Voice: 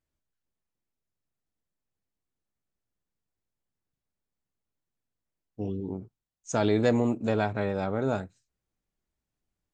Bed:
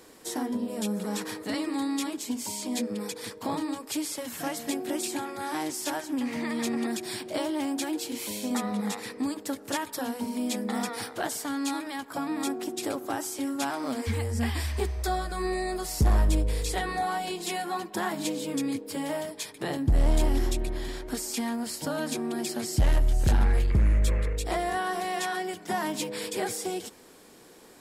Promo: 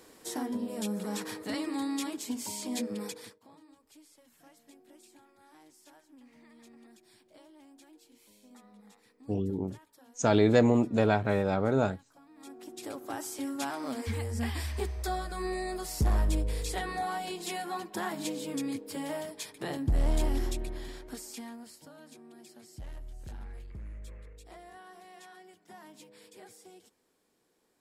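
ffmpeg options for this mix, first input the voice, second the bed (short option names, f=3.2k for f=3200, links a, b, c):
-filter_complex "[0:a]adelay=3700,volume=1.5dB[a];[1:a]volume=18.5dB,afade=t=out:st=3.06:d=0.33:silence=0.0707946,afade=t=in:st=12.34:d=0.98:silence=0.0794328,afade=t=out:st=20.33:d=1.57:silence=0.141254[b];[a][b]amix=inputs=2:normalize=0"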